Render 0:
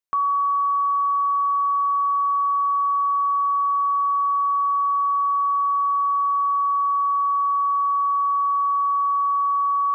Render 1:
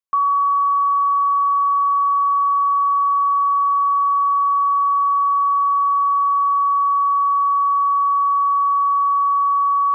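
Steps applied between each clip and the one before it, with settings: small resonant body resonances 1100 Hz, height 14 dB, ringing for 65 ms; gain -4.5 dB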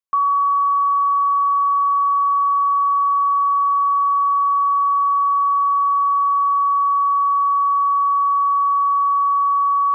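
nothing audible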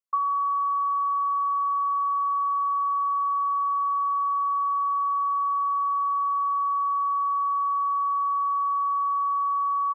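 formant sharpening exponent 1.5; early reflections 19 ms -17.5 dB, 43 ms -16.5 dB; gain -5.5 dB

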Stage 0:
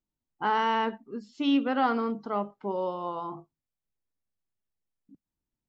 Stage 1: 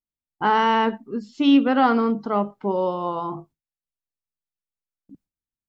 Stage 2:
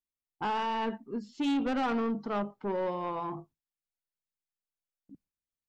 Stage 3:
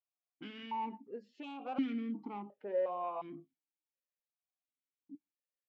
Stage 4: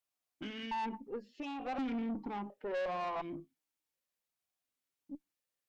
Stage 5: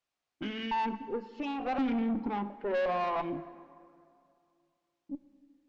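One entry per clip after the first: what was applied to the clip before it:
low shelf 240 Hz +5.5 dB; gate with hold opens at -50 dBFS; gain +6.5 dB
limiter -10.5 dBFS, peak gain reduction 3.5 dB; soft clip -19.5 dBFS, distortion -10 dB; gain -6 dB
compressor, threshold -31 dBFS, peak gain reduction 4.5 dB; vowel sequencer 2.8 Hz; gain +6 dB
tube stage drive 40 dB, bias 0.35; gain +6.5 dB
air absorption 96 m; plate-style reverb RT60 2.4 s, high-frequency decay 0.6×, DRR 13.5 dB; gain +6.5 dB

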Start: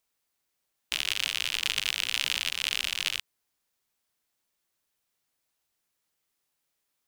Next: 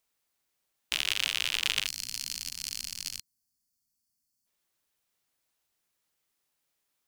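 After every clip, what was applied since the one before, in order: spectral gain 1.86–4.46, 300–4200 Hz -16 dB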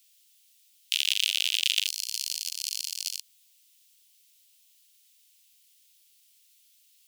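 added noise white -67 dBFS; Chebyshev high-pass 2900 Hz, order 3; gain +5 dB

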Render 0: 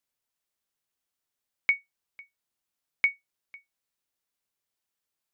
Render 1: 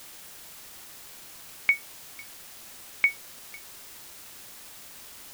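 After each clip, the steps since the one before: requantised 8-bit, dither triangular; gain +2 dB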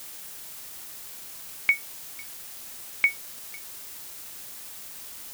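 high shelf 6500 Hz +6.5 dB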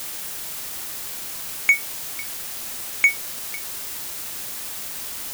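sample leveller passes 2; gain +2 dB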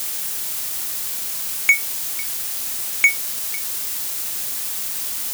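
high shelf 3400 Hz +7 dB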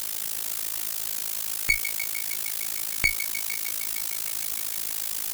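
one-sided clip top -23 dBFS; thinning echo 0.153 s, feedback 84%, high-pass 580 Hz, level -11.5 dB; AM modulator 54 Hz, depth 90%

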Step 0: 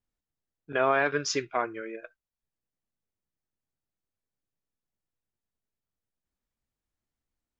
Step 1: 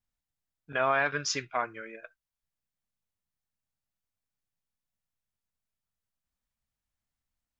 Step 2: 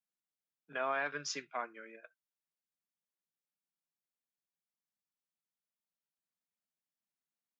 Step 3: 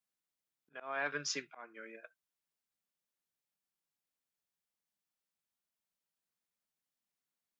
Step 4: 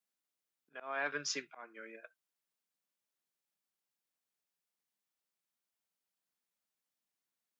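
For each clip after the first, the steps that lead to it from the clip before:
bell 370 Hz -10.5 dB 0.95 oct
steep high-pass 150 Hz 72 dB/oct; gain -8.5 dB
auto swell 0.291 s; gain +2 dB
HPF 160 Hz

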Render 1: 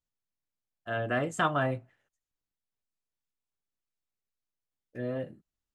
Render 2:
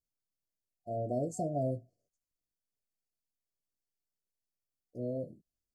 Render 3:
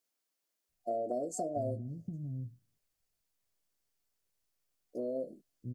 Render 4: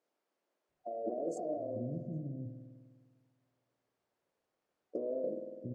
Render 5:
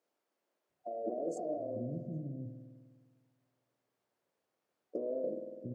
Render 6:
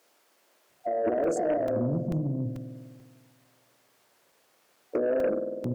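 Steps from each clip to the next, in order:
FFT band-reject 740–4200 Hz; gain -2.5 dB
compressor, threshold -40 dBFS, peak gain reduction 11 dB; bands offset in time highs, lows 0.69 s, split 230 Hz; gain +9 dB
negative-ratio compressor -42 dBFS, ratio -1; band-pass 520 Hz, Q 0.75; spring tank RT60 1.7 s, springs 50 ms, chirp 35 ms, DRR 5 dB; gain +6.5 dB
HPF 85 Hz
added harmonics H 2 -19 dB, 4 -26 dB, 5 -19 dB, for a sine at -25.5 dBFS; crackling interface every 0.44 s, samples 128, zero, from 0.36; mismatched tape noise reduction encoder only; gain +9 dB

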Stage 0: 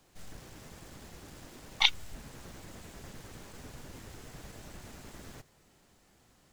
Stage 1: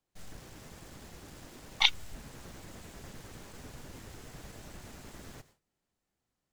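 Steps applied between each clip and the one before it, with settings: gate with hold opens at -52 dBFS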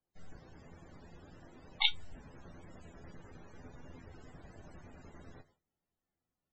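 polynomial smoothing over 9 samples; resonator 85 Hz, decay 0.15 s, harmonics all, mix 70%; loudest bins only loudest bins 64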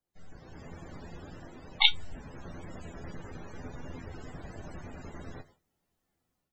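AGC gain up to 9.5 dB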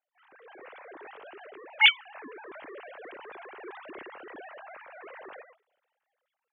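sine-wave speech; transient shaper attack -8 dB, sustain +4 dB; gain +7 dB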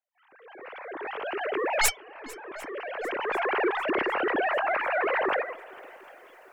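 tracing distortion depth 0.25 ms; recorder AGC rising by 15 dB/s; swung echo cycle 0.749 s, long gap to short 1.5:1, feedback 46%, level -22 dB; gain -5 dB

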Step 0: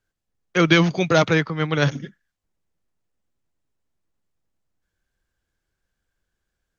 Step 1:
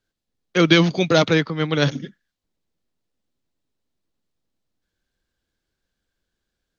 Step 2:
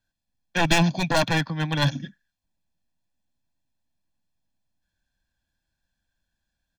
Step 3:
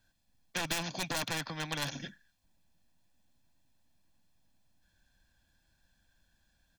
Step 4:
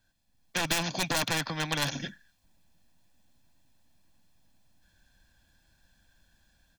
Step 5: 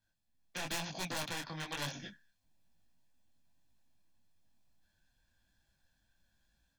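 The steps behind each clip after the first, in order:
graphic EQ 250/500/4000 Hz +6/+3/+8 dB; gain -2.5 dB
one-sided fold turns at -13 dBFS; comb 1.2 ms, depth 85%; gain -4.5 dB
compressor 2.5:1, threshold -25 dBFS, peak gain reduction 7.5 dB; spectral compressor 2:1; gain -7.5 dB
AGC gain up to 6 dB
detuned doubles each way 37 cents; gain -6.5 dB

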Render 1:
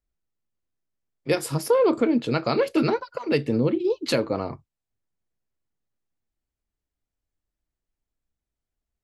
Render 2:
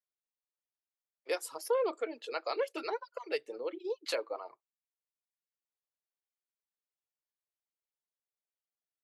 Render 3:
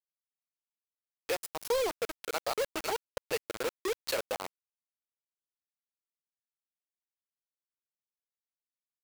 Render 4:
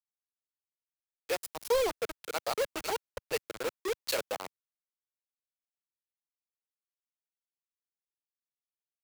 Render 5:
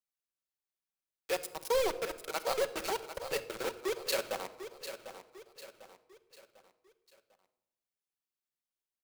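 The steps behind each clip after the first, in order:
inverse Chebyshev high-pass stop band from 210 Hz, stop band 40 dB; reverb removal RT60 0.91 s; gain -9 dB
in parallel at +3 dB: compressor 10:1, threshold -38 dBFS, peak gain reduction 13 dB; on the sum: dynamic EQ 800 Hz, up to +5 dB, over -48 dBFS, Q 5.2; bit-crush 5-bit; gain -3.5 dB
three-band expander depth 70%
on a send: feedback echo 0.748 s, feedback 43%, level -11 dB; on the sum: shoebox room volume 3800 m³, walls furnished, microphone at 1.1 m; gain -1.5 dB

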